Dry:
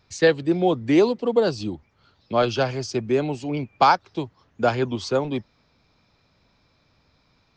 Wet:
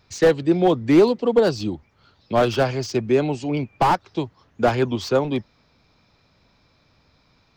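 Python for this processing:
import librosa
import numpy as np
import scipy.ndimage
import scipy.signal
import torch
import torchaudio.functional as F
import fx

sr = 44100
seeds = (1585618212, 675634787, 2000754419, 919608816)

y = fx.slew_limit(x, sr, full_power_hz=120.0)
y = y * 10.0 ** (3.0 / 20.0)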